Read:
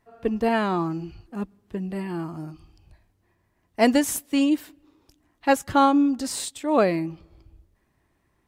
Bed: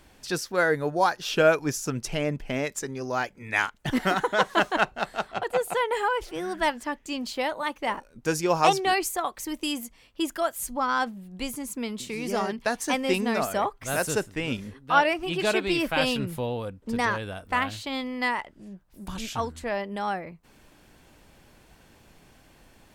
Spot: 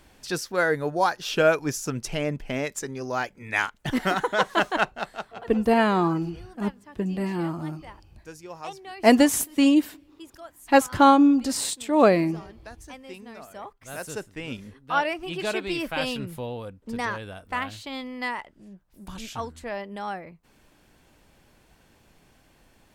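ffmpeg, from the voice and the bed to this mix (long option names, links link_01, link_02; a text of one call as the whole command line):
ffmpeg -i stem1.wav -i stem2.wav -filter_complex "[0:a]adelay=5250,volume=2.5dB[link_01];[1:a]volume=13.5dB,afade=type=out:start_time=4.82:duration=0.71:silence=0.141254,afade=type=in:start_time=13.44:duration=1.36:silence=0.211349[link_02];[link_01][link_02]amix=inputs=2:normalize=0" out.wav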